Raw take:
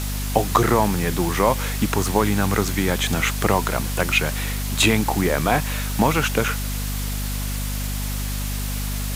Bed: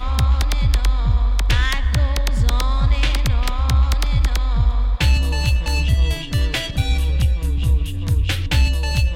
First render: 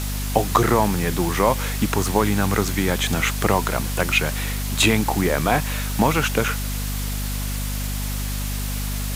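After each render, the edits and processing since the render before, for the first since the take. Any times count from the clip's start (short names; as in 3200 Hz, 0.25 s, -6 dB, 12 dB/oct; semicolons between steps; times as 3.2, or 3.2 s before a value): nothing audible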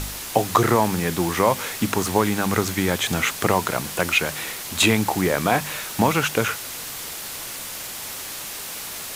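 de-hum 50 Hz, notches 5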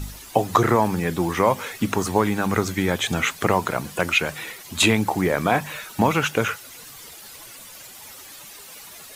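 denoiser 12 dB, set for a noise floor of -33 dBFS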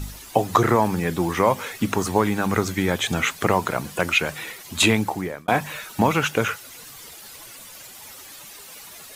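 4.95–5.48 fade out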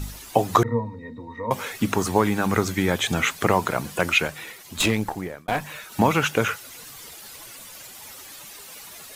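0.63–1.51 octave resonator A#, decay 0.12 s; 4.27–5.92 tube stage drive 13 dB, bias 0.7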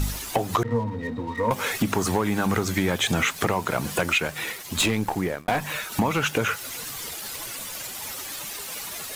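compressor 5:1, threshold -26 dBFS, peak gain reduction 13 dB; sample leveller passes 2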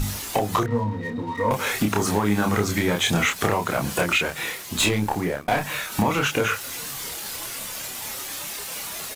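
doubler 29 ms -3 dB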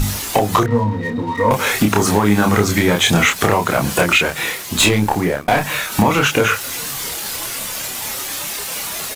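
gain +7.5 dB; limiter -3 dBFS, peak gain reduction 2 dB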